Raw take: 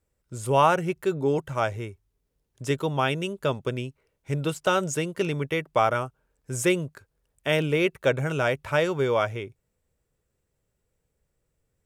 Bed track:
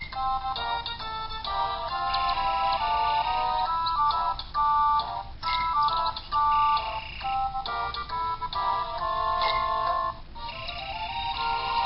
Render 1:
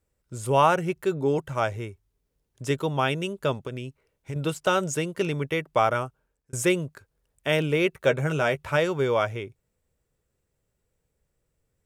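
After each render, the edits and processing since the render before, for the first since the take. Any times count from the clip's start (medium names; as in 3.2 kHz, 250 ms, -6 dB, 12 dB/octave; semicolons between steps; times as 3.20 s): 3.61–4.36 s: compression, threshold -29 dBFS; 6.00–6.53 s: fade out equal-power; 7.96–8.77 s: doubling 13 ms -9 dB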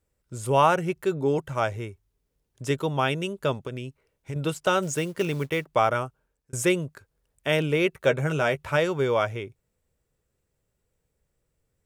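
4.82–5.66 s: companded quantiser 6-bit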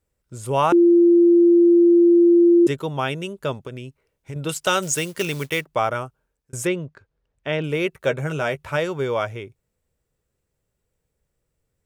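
0.72–2.67 s: bleep 344 Hz -10 dBFS; 4.49–5.61 s: treble shelf 2 kHz +10.5 dB; 6.67–7.64 s: distance through air 150 m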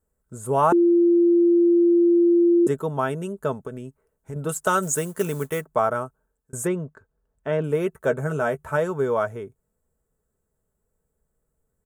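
high-order bell 3.4 kHz -14.5 dB; comb 4.6 ms, depth 40%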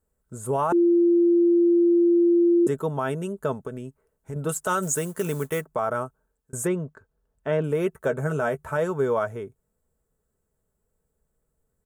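peak limiter -15 dBFS, peak gain reduction 7.5 dB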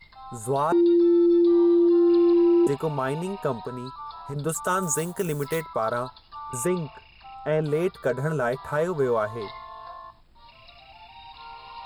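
add bed track -14.5 dB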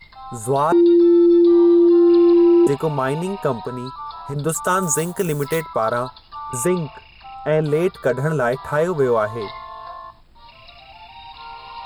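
trim +6 dB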